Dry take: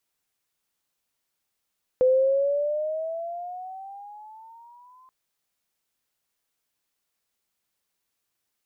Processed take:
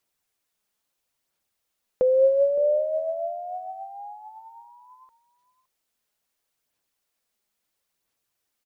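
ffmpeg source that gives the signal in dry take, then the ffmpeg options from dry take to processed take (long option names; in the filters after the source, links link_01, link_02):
-f lavfi -i "aevalsrc='pow(10,(-15-36*t/3.08)/20)*sin(2*PI*506*3.08/(12.5*log(2)/12)*(exp(12.5*log(2)/12*t/3.08)-1))':duration=3.08:sample_rate=44100"
-filter_complex "[0:a]equalizer=frequency=590:width_type=o:width=0.77:gain=2.5,aphaser=in_gain=1:out_gain=1:delay=4.9:decay=0.3:speed=0.74:type=sinusoidal,asplit=2[link_01][link_02];[link_02]adelay=565.6,volume=-17dB,highshelf=frequency=4000:gain=-12.7[link_03];[link_01][link_03]amix=inputs=2:normalize=0"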